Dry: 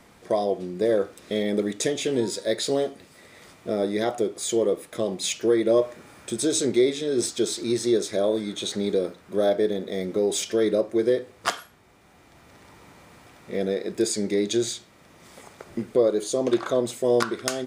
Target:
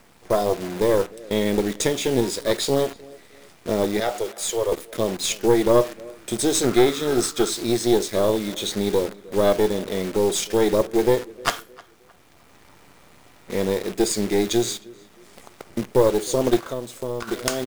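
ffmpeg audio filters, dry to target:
ffmpeg -i in.wav -filter_complex "[0:a]acrusher=bits=7:dc=4:mix=0:aa=0.000001,asettb=1/sr,asplit=3[link_01][link_02][link_03];[link_01]atrim=end=4.004[link_04];[link_02]atrim=start=4:end=4.72,asetpts=PTS-STARTPTS,afade=type=in:duration=0.004:curve=qsin,afade=type=out:start_time=0.716:duration=0.004:curve=qsin,highpass=frequency=470:width=0.5412,highpass=frequency=470:width=1.3066[link_05];[link_03]atrim=start=4.716[link_06];[link_04][link_05]acrossfade=duration=0.004:curve1=hsin:curve2=qsin[link_07];[link_07][link_06]acrossfade=duration=0.004:curve1=qsin:curve2=hsin,asplit=2[link_08][link_09];[link_09]adelay=310,lowpass=frequency=2900:poles=1,volume=-21.5dB,asplit=2[link_10][link_11];[link_11]adelay=310,lowpass=frequency=2900:poles=1,volume=0.35,asplit=2[link_12][link_13];[link_13]adelay=310,lowpass=frequency=2900:poles=1,volume=0.35[link_14];[link_08][link_10][link_12][link_14]amix=inputs=4:normalize=0,aeval=exprs='(tanh(3.98*val(0)+0.75)-tanh(0.75))/3.98':channel_layout=same,asettb=1/sr,asplit=3[link_15][link_16][link_17];[link_15]atrim=end=6.634[link_18];[link_16]atrim=start=6.63:end=7.5,asetpts=PTS-STARTPTS,afade=type=in:duration=0.004:curve=qsin,afade=type=out:start_time=0.866:duration=0.004:curve=qsin,equalizer=frequency=1300:width=3.9:gain=15[link_19];[link_17]atrim=start=7.496[link_20];[link_18][link_19]acrossfade=duration=0.004:curve1=hsin:curve2=qsin[link_21];[link_21][link_20]acrossfade=duration=0.004:curve1=qsin:curve2=hsin,asplit=3[link_22][link_23][link_24];[link_22]afade=type=out:start_time=16.59:duration=0.02[link_25];[link_23]acompressor=threshold=-37dB:ratio=2.5,afade=type=in:start_time=16.59:duration=0.02,afade=type=out:start_time=17.27:duration=0.02[link_26];[link_24]afade=type=in:start_time=17.27:duration=0.02[link_27];[link_25][link_26][link_27]amix=inputs=3:normalize=0,volume=7dB" out.wav

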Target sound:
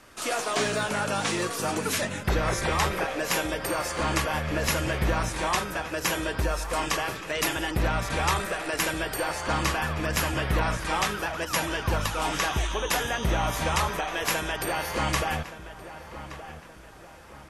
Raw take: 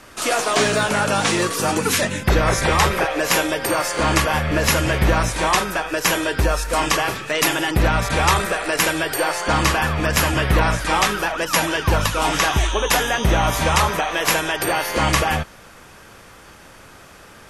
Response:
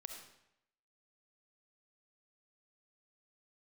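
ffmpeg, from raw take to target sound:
-filter_complex "[0:a]asplit=2[link_01][link_02];[link_02]adelay=1172,lowpass=frequency=2300:poles=1,volume=-13dB,asplit=2[link_03][link_04];[link_04]adelay=1172,lowpass=frequency=2300:poles=1,volume=0.45,asplit=2[link_05][link_06];[link_06]adelay=1172,lowpass=frequency=2300:poles=1,volume=0.45,asplit=2[link_07][link_08];[link_08]adelay=1172,lowpass=frequency=2300:poles=1,volume=0.45[link_09];[link_01][link_03][link_05][link_07][link_09]amix=inputs=5:normalize=0,volume=-8.5dB"

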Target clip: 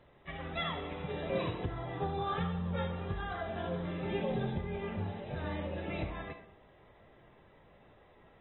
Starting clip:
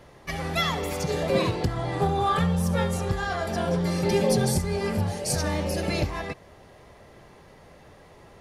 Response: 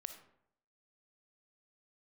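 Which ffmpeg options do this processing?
-filter_complex "[0:a]asettb=1/sr,asplit=3[link_01][link_02][link_03];[link_01]atrim=end=2.584[link_04];[link_02]atrim=start=2.58:end=4.21,asetpts=PTS-STARTPTS,afade=type=in:duration=0.004:curve=qsin,afade=type=out:start_time=1.626:duration=0.004:curve=qsin,asplit=2[link_05][link_06];[link_06]adelay=21,volume=-9dB[link_07];[link_05][link_07]amix=inputs=2:normalize=0,atrim=end_sample=71883[link_08];[link_03]atrim=start=4.206[link_09];[link_04][link_08]acrossfade=duration=0.004:curve1=hsin:curve2=qsin[link_10];[link_10][link_09]acrossfade=duration=0.004:curve1=qsin:curve2=hsin[link_11];[1:a]atrim=start_sample=2205,afade=type=out:start_time=0.29:duration=0.01,atrim=end_sample=13230[link_12];[link_11][link_12]afir=irnorm=-1:irlink=0,volume=-7dB" -ar 24000 -c:a aac -b:a 16k

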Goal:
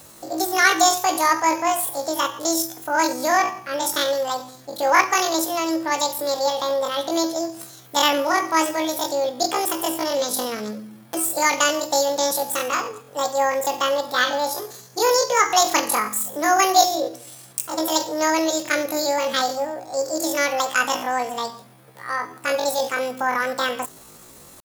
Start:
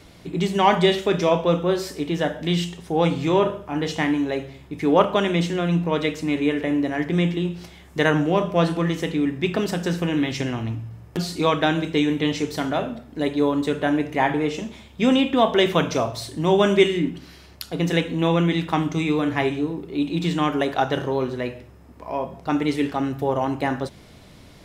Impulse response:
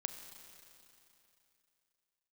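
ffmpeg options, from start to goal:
-af "bass=frequency=250:gain=-5,treble=frequency=4000:gain=14,asetrate=83250,aresample=44100,atempo=0.529732,volume=1dB"

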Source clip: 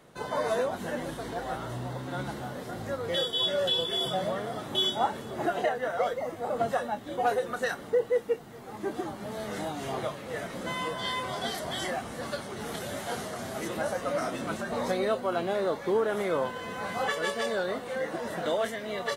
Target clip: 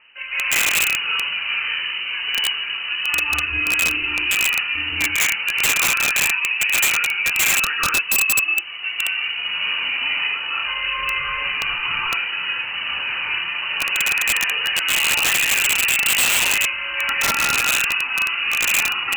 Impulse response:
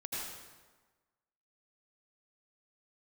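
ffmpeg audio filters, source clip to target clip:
-filter_complex "[0:a]acontrast=74,lowpass=frequency=2600:width_type=q:width=0.5098,lowpass=frequency=2600:width_type=q:width=0.6013,lowpass=frequency=2600:width_type=q:width=0.9,lowpass=frequency=2600:width_type=q:width=2.563,afreqshift=-3100[link_01];[1:a]atrim=start_sample=2205,atrim=end_sample=6615,asetrate=23373,aresample=44100[link_02];[link_01][link_02]afir=irnorm=-1:irlink=0,aeval=exprs='(mod(3.76*val(0)+1,2)-1)/3.76':channel_layout=same"

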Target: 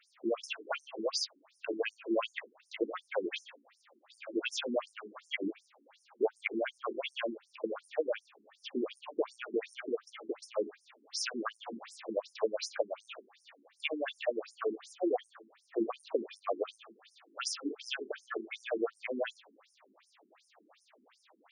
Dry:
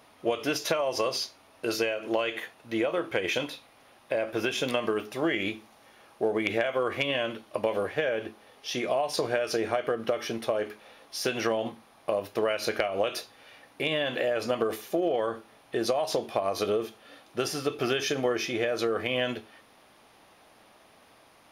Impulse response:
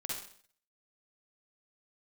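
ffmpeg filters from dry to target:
-filter_complex "[0:a]asettb=1/sr,asplit=3[link_01][link_02][link_03];[link_01]atrim=end=11.634[link_04];[link_02]atrim=start=11.63:end=12.16,asetpts=PTS-STARTPTS,afade=type=in:duration=0.004:curve=qsin,afade=type=out:start_time=0.526:duration=0.004:curve=qsin,aeval=exprs='val(0)+0.5*0.0141*sgn(val(0))':channel_layout=same[link_05];[link_03]atrim=start=12.156[link_06];[link_04][link_05]acrossfade=duration=0.004:curve1=hsin:curve2=qsin[link_07];[link_07][link_06]acrossfade=duration=0.004:curve1=qsin:curve2=hsin,afftfilt=real='re*between(b*sr/1024,270*pow(7300/270,0.5+0.5*sin(2*PI*2.7*pts/sr))/1.41,270*pow(7300/270,0.5+0.5*sin(2*PI*2.7*pts/sr))*1.41)':imag='im*between(b*sr/1024,270*pow(7300/270,0.5+0.5*sin(2*PI*2.7*pts/sr))/1.41,270*pow(7300/270,0.5+0.5*sin(2*PI*2.7*pts/sr))*1.41)':win_size=1024:overlap=0.75"

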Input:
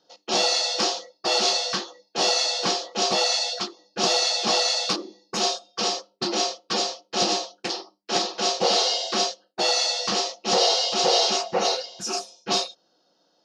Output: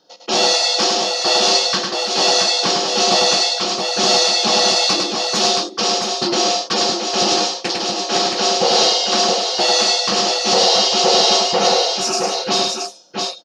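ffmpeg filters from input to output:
ffmpeg -i in.wav -filter_complex "[0:a]asplit=2[link_01][link_02];[link_02]alimiter=limit=-16.5dB:level=0:latency=1,volume=0.5dB[link_03];[link_01][link_03]amix=inputs=2:normalize=0,aecho=1:1:49|103|673:0.126|0.631|0.596,volume=1dB" out.wav

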